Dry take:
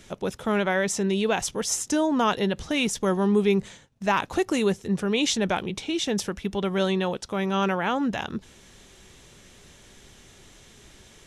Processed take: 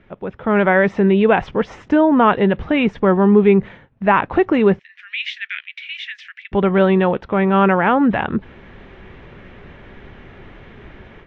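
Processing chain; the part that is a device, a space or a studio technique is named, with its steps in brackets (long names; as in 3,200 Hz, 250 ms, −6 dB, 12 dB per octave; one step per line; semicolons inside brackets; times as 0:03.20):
0:04.79–0:06.52: Butterworth high-pass 1,800 Hz 48 dB per octave
action camera in a waterproof case (low-pass filter 2,300 Hz 24 dB per octave; automatic gain control gain up to 13 dB; AAC 64 kbit/s 24,000 Hz)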